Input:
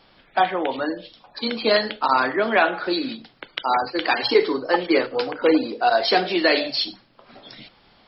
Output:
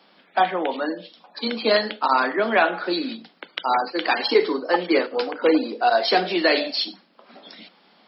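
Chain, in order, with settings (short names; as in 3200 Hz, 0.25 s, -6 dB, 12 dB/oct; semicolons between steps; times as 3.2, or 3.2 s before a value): Chebyshev high-pass 170 Hz, order 6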